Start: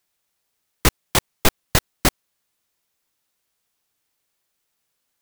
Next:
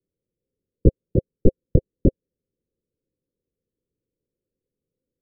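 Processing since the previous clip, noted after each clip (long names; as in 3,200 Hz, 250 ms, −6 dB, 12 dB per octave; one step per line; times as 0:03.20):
Chebyshev low-pass filter 530 Hz, order 6
level +5 dB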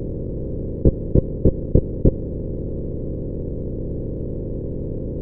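compressor on every frequency bin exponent 0.2
windowed peak hold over 3 samples
level −2.5 dB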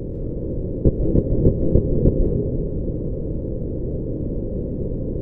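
convolution reverb RT60 1.7 s, pre-delay 115 ms, DRR 1 dB
level −1.5 dB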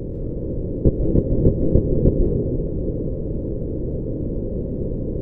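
echo through a band-pass that steps 456 ms, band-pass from 310 Hz, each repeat 0.7 octaves, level −8.5 dB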